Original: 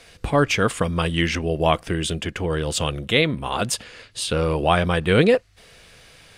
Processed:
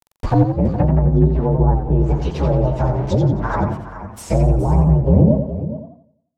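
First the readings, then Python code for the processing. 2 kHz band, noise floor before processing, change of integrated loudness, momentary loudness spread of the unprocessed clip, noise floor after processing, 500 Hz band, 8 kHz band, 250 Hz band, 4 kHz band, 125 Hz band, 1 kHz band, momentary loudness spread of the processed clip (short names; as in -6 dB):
-12.5 dB, -50 dBFS, +4.5 dB, 8 LU, -68 dBFS, 0.0 dB, under -10 dB, +6.5 dB, -18.0 dB, +10.5 dB, 0.0 dB, 11 LU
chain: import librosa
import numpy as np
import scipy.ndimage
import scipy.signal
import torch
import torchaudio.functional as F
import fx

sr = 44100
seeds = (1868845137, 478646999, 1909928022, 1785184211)

p1 = fx.partial_stretch(x, sr, pct=128)
p2 = np.where(np.abs(p1) >= 10.0 ** (-35.5 / 20.0), p1, 0.0)
p3 = fx.peak_eq(p2, sr, hz=870.0, db=9.5, octaves=0.62)
p4 = fx.env_lowpass_down(p3, sr, base_hz=360.0, full_db=-18.5)
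p5 = fx.low_shelf(p4, sr, hz=480.0, db=8.5)
p6 = p5 + fx.echo_single(p5, sr, ms=419, db=-12.5, dry=0)
p7 = fx.echo_warbled(p6, sr, ms=87, feedback_pct=40, rate_hz=2.8, cents=136, wet_db=-7)
y = p7 * 10.0 ** (2.5 / 20.0)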